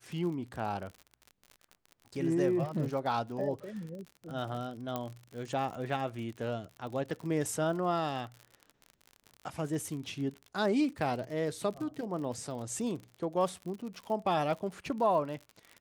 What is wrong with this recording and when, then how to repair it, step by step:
crackle 55/s -39 dBFS
4.96 pop -20 dBFS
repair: de-click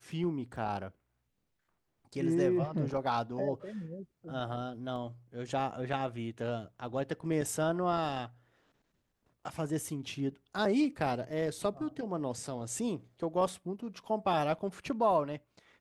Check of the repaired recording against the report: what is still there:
4.96 pop

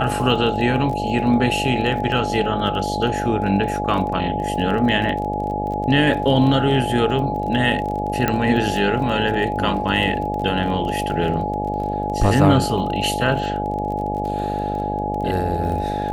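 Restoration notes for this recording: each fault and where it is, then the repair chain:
buzz 50 Hz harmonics 15 -26 dBFS
crackle 23/s -28 dBFS
tone 840 Hz -24 dBFS
8.28 pop -5 dBFS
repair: de-click; de-hum 50 Hz, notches 15; notch 840 Hz, Q 30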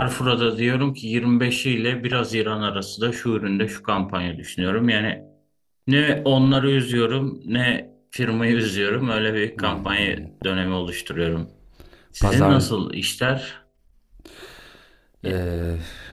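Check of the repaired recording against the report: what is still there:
none

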